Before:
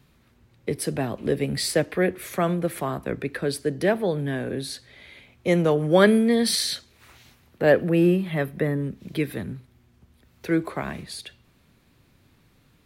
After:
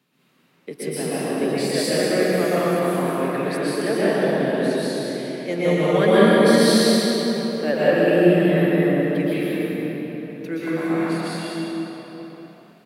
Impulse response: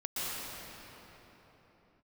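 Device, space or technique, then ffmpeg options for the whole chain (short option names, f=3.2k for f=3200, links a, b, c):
PA in a hall: -filter_complex "[0:a]highpass=f=180:w=0.5412,highpass=f=180:w=1.3066,equalizer=f=2.8k:t=o:w=0.28:g=3,aecho=1:1:188:0.501[a];[1:a]atrim=start_sample=2205[b];[a][b]afir=irnorm=-1:irlink=0,volume=-2.5dB"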